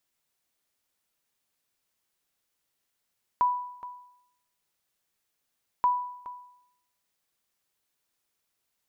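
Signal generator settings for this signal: sonar ping 987 Hz, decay 0.76 s, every 2.43 s, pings 2, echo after 0.42 s, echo -15.5 dB -17 dBFS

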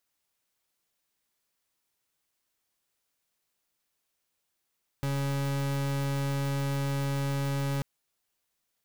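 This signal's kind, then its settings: pulse 139 Hz, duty 39% -29.5 dBFS 2.79 s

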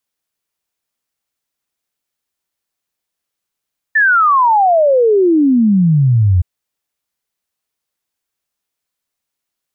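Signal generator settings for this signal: log sweep 1.8 kHz -> 85 Hz 2.47 s -7.5 dBFS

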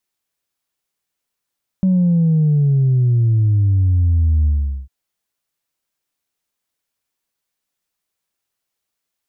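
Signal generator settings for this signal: sub drop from 190 Hz, over 3.05 s, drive 0 dB, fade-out 0.42 s, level -11.5 dB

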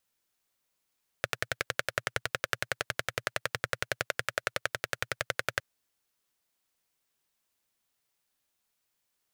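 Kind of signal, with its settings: single-cylinder engine model, steady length 4.36 s, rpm 1300, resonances 120/550/1500 Hz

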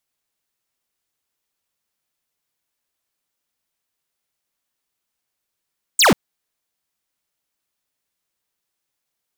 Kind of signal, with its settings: laser zap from 9.1 kHz, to 150 Hz, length 0.14 s square, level -12 dB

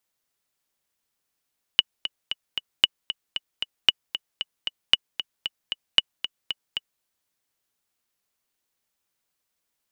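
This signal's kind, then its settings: metronome 229 bpm, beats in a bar 4, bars 5, 2.94 kHz, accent 12 dB -1.5 dBFS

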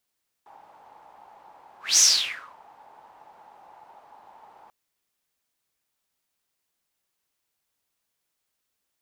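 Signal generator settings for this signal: whoosh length 4.24 s, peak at 1.52 s, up 0.20 s, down 0.64 s, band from 850 Hz, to 6.2 kHz, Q 7.7, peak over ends 35 dB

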